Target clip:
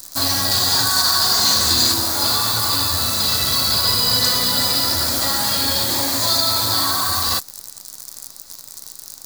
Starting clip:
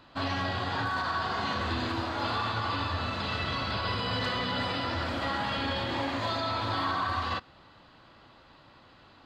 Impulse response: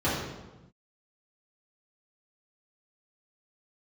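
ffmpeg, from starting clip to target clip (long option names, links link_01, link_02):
-filter_complex "[0:a]asettb=1/sr,asplit=3[link_01][link_02][link_03];[link_01]atrim=end=0.514[link_04];[link_02]atrim=start=0.51:end=1.94,asetpts=PTS-STARTPTS,afade=type=in:duration=0.004:curve=qsin,afade=type=out:start_time=1.426:duration=0.004:curve=qsin,highshelf=frequency=3300:gain=7[link_05];[link_03]atrim=start=1.936[link_06];[link_04][link_05]acrossfade=duration=0.004:curve1=hsin:curve2=qsin[link_07];[link_07][link_06]acrossfade=duration=0.004:curve1=qsin:curve2=hsin,acrusher=bits=9:dc=4:mix=0:aa=0.000001,aexciter=amount=11.7:drive=8.1:freq=4500,volume=5.5dB"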